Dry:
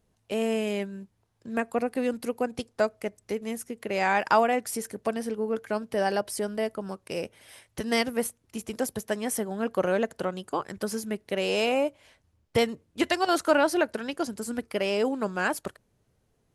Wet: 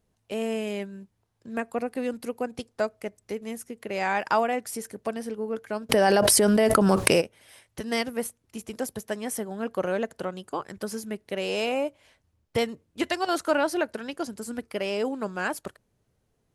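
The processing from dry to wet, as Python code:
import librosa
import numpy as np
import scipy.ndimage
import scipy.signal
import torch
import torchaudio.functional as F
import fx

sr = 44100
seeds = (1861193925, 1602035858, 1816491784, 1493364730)

y = fx.env_flatten(x, sr, amount_pct=100, at=(5.89, 7.2), fade=0.02)
y = y * librosa.db_to_amplitude(-2.0)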